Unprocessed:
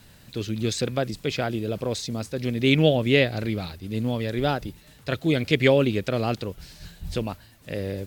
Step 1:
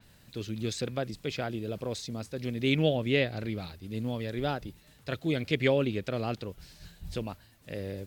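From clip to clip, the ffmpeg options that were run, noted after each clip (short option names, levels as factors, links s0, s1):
-af "adynamicequalizer=threshold=0.00891:dfrequency=5100:dqfactor=0.7:tfrequency=5100:tqfactor=0.7:attack=5:release=100:ratio=0.375:range=2.5:mode=cutabove:tftype=highshelf,volume=0.447"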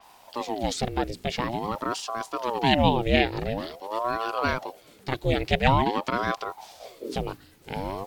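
-af "aeval=exprs='val(0)*sin(2*PI*550*n/s+550*0.65/0.47*sin(2*PI*0.47*n/s))':c=same,volume=2.51"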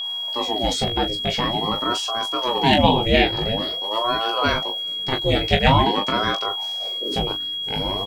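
-af "asoftclip=type=hard:threshold=0.531,aecho=1:1:19|39:0.596|0.355,aeval=exprs='val(0)+0.0398*sin(2*PI*3300*n/s)':c=same,volume=1.41"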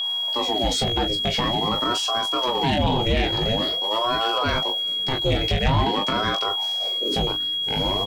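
-filter_complex "[0:a]acrossover=split=140[s0][s1];[s1]alimiter=limit=0.188:level=0:latency=1:release=77[s2];[s0][s2]amix=inputs=2:normalize=0,asoftclip=type=tanh:threshold=0.178,volume=1.33"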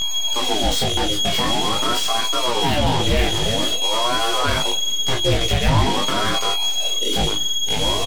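-af "aeval=exprs='0.237*(cos(1*acos(clip(val(0)/0.237,-1,1)))-cos(1*PI/2))+0.0376*(cos(8*acos(clip(val(0)/0.237,-1,1)))-cos(8*PI/2))':c=same,flanger=delay=17:depth=6.1:speed=0.38,aecho=1:1:183:0.075,volume=1.68"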